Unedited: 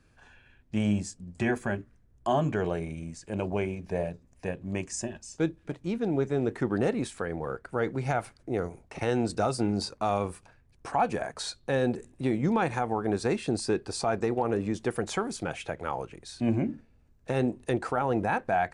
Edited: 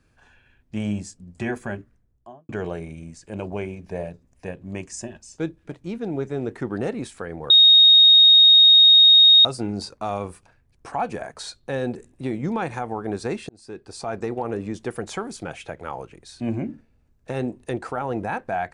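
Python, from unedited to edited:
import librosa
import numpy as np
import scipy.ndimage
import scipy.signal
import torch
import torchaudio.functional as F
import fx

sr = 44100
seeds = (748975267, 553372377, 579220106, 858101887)

y = fx.studio_fade_out(x, sr, start_s=1.8, length_s=0.69)
y = fx.edit(y, sr, fx.bleep(start_s=7.5, length_s=1.95, hz=3730.0, db=-8.5),
    fx.fade_in_span(start_s=13.49, length_s=0.74), tone=tone)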